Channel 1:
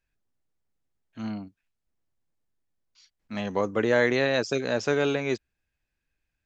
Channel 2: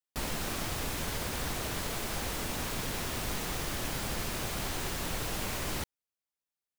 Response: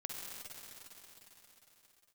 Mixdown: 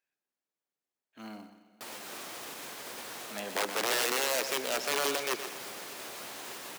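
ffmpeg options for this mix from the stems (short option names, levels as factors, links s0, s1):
-filter_complex "[0:a]aeval=exprs='(mod(8.41*val(0)+1,2)-1)/8.41':c=same,volume=0.531,asplit=4[s0][s1][s2][s3];[s1]volume=0.282[s4];[s2]volume=0.355[s5];[1:a]alimiter=level_in=1.33:limit=0.0631:level=0:latency=1:release=179,volume=0.75,flanger=delay=8.5:depth=8.1:regen=-63:speed=0.36:shape=sinusoidal,adelay=1650,volume=0.794,asplit=2[s6][s7];[s7]volume=0.562[s8];[s3]apad=whole_len=372133[s9];[s6][s9]sidechaincompress=threshold=0.0126:ratio=8:attack=16:release=104[s10];[2:a]atrim=start_sample=2205[s11];[s4][s8]amix=inputs=2:normalize=0[s12];[s12][s11]afir=irnorm=-1:irlink=0[s13];[s5]aecho=0:1:124|248|372|496|620|744:1|0.41|0.168|0.0689|0.0283|0.0116[s14];[s0][s10][s13][s14]amix=inputs=4:normalize=0,highpass=360,acrusher=bits=5:mode=log:mix=0:aa=0.000001"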